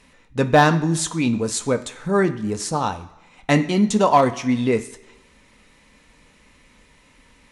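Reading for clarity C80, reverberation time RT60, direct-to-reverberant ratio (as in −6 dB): 16.5 dB, 1.0 s, 7.0 dB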